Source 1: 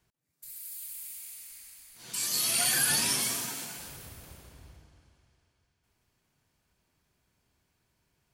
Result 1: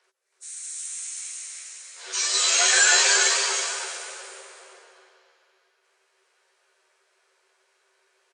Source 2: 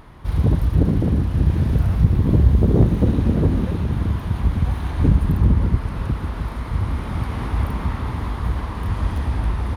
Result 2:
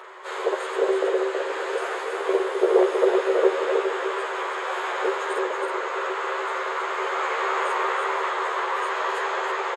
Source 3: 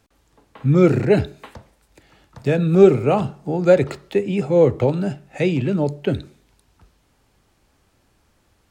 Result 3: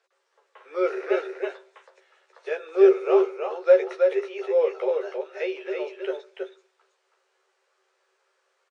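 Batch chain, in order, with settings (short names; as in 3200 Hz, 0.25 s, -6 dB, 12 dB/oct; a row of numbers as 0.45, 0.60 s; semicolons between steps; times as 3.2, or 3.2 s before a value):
nonlinear frequency compression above 3300 Hz 1.5:1; rippled Chebyshev high-pass 370 Hz, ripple 6 dB; doubler 13 ms -4.5 dB; echo 0.323 s -4.5 dB; normalise peaks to -6 dBFS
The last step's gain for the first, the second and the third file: +12.0, +9.5, -4.5 dB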